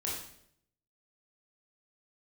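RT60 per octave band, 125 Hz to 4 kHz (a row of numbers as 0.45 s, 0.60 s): 0.90 s, 0.80 s, 0.75 s, 0.60 s, 0.60 s, 0.60 s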